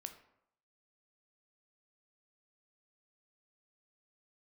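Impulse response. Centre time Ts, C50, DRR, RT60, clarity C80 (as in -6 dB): 12 ms, 11.0 dB, 7.0 dB, 0.75 s, 13.5 dB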